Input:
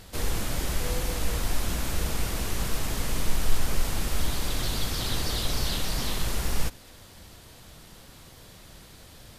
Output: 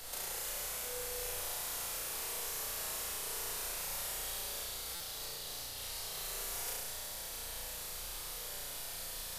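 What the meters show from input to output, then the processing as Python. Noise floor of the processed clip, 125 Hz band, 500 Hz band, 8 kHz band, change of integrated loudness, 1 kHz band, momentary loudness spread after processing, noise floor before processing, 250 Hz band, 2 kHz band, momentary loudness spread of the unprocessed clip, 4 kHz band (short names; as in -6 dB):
-44 dBFS, -24.5 dB, -10.0 dB, -3.0 dB, -8.0 dB, -9.0 dB, 4 LU, -50 dBFS, -23.0 dB, -9.0 dB, 20 LU, -8.0 dB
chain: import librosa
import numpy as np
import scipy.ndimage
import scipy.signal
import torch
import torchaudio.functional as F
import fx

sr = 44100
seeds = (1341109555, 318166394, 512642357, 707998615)

y = scipy.signal.sosfilt(scipy.signal.butter(8, 410.0, 'highpass', fs=sr, output='sos'), x)
y = fx.high_shelf(y, sr, hz=6700.0, db=11.5)
y = fx.over_compress(y, sr, threshold_db=-35.0, ratio=-0.5)
y = fx.dmg_noise_colour(y, sr, seeds[0], colour='brown', level_db=-49.0)
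y = fx.room_flutter(y, sr, wall_m=5.9, rt60_s=1.4)
y = fx.buffer_glitch(y, sr, at_s=(4.95,), block=256, repeats=8)
y = F.gain(torch.from_numpy(y), -8.5).numpy()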